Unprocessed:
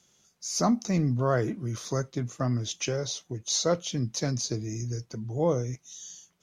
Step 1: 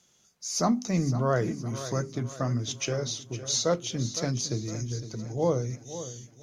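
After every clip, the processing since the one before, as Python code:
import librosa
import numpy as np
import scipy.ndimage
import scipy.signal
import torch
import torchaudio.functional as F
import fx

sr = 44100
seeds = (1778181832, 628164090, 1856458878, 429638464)

y = fx.hum_notches(x, sr, base_hz=50, count=8)
y = fx.echo_feedback(y, sr, ms=511, feedback_pct=44, wet_db=-13.0)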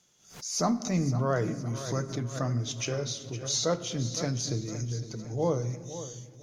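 y = fx.room_shoebox(x, sr, seeds[0], volume_m3=1200.0, walls='mixed', distance_m=0.4)
y = fx.pre_swell(y, sr, db_per_s=110.0)
y = y * librosa.db_to_amplitude(-2.0)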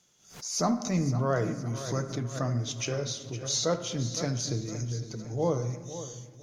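y = fx.echo_wet_bandpass(x, sr, ms=72, feedback_pct=58, hz=980.0, wet_db=-13.0)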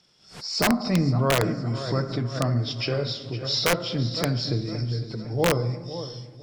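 y = fx.freq_compress(x, sr, knee_hz=3700.0, ratio=1.5)
y = (np.mod(10.0 ** (18.0 / 20.0) * y + 1.0, 2.0) - 1.0) / 10.0 ** (18.0 / 20.0)
y = y * librosa.db_to_amplitude(5.5)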